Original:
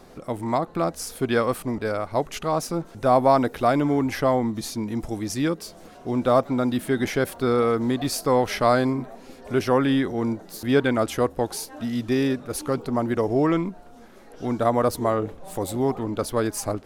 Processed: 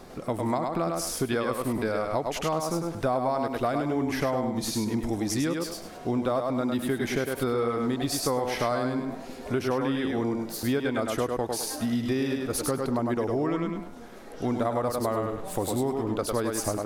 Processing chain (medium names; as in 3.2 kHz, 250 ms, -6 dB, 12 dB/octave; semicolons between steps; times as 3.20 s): on a send: thinning echo 102 ms, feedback 26%, high-pass 170 Hz, level -4 dB; on the sum: compression, threshold -26 dBFS, peak gain reduction 13.5 dB; trim +2 dB